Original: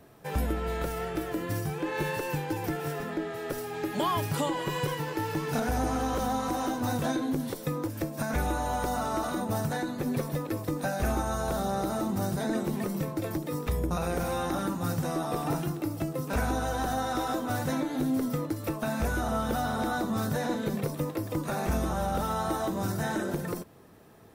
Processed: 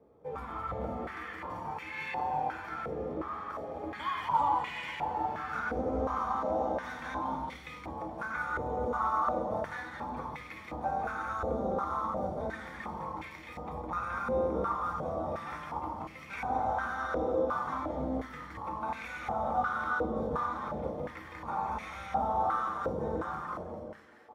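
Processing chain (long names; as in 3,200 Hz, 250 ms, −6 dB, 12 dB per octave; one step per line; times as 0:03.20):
sub-octave generator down 2 octaves, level +1 dB
comb filter 0.9 ms, depth 48%
echo with shifted repeats 212 ms, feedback 55%, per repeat −130 Hz, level −4.5 dB
on a send at −3 dB: convolution reverb RT60 1.0 s, pre-delay 3 ms
on the sum: band-pass on a step sequencer 2.8 Hz 490–2,200 Hz
level +3 dB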